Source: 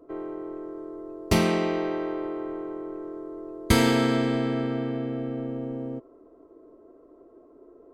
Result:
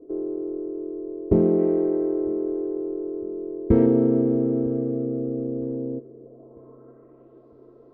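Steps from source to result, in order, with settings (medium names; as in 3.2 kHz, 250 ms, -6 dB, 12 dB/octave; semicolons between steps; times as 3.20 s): low-pass sweep 410 Hz -> 4.3 kHz, 6.15–7.47 s; 1.58–3.86 s: dynamic bell 2 kHz, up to +7 dB, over -45 dBFS, Q 0.96; filtered feedback delay 954 ms, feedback 47%, low-pass 3.4 kHz, level -24 dB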